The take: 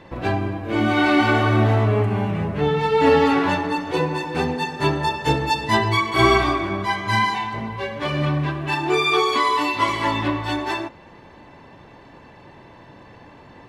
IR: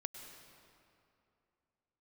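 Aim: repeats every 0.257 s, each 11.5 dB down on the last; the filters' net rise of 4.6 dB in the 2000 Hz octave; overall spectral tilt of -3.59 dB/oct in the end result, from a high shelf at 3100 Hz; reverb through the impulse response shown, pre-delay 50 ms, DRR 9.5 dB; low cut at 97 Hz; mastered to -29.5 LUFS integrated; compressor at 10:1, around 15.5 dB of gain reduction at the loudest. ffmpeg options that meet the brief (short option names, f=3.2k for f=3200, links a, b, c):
-filter_complex "[0:a]highpass=97,equalizer=f=2k:t=o:g=7,highshelf=f=3.1k:g=-3.5,acompressor=threshold=-26dB:ratio=10,aecho=1:1:257|514|771:0.266|0.0718|0.0194,asplit=2[a][b];[1:a]atrim=start_sample=2205,adelay=50[c];[b][c]afir=irnorm=-1:irlink=0,volume=-7dB[d];[a][d]amix=inputs=2:normalize=0,volume=-1dB"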